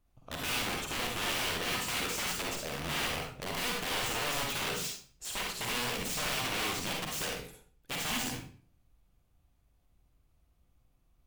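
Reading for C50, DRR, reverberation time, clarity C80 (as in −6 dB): 1.5 dB, −1.0 dB, 0.45 s, 7.0 dB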